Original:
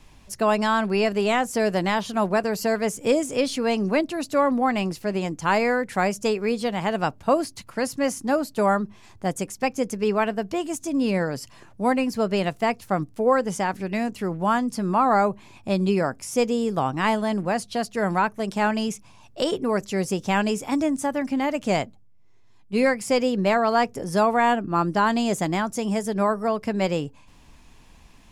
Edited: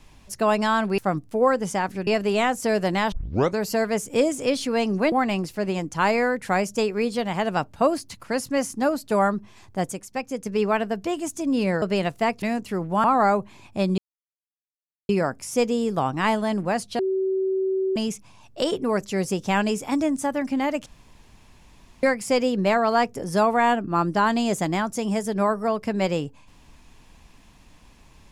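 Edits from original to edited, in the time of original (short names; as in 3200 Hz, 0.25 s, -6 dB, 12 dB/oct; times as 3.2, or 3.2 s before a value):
2.03 tape start 0.46 s
4.03–4.59 cut
9.39–9.93 gain -5 dB
11.29–12.23 cut
12.83–13.92 move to 0.98
14.54–14.95 cut
15.89 insert silence 1.11 s
17.79–18.76 bleep 381 Hz -20.5 dBFS
21.66–22.83 room tone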